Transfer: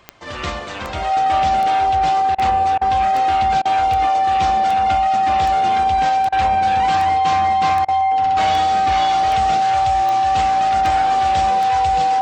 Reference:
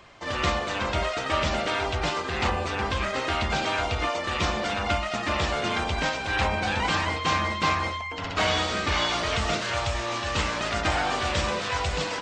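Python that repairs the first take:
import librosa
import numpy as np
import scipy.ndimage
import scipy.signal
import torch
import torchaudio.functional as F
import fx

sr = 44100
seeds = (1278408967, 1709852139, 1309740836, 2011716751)

y = fx.fix_declick_ar(x, sr, threshold=10.0)
y = fx.notch(y, sr, hz=770.0, q=30.0)
y = fx.fix_interpolate(y, sr, at_s=(2.35, 2.78, 3.62, 6.29, 7.85), length_ms=32.0)
y = fx.fix_echo_inverse(y, sr, delay_ms=634, level_db=-22.5)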